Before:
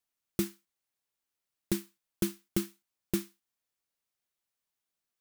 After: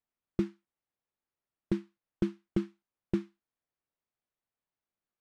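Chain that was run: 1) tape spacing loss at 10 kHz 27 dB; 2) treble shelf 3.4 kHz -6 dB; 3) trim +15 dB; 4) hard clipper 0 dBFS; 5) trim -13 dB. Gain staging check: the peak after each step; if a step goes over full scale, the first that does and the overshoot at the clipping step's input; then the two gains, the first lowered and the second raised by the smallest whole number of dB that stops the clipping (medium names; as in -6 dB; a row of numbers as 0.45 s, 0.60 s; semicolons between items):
-17.5 dBFS, -17.5 dBFS, -2.5 dBFS, -2.5 dBFS, -15.5 dBFS; nothing clips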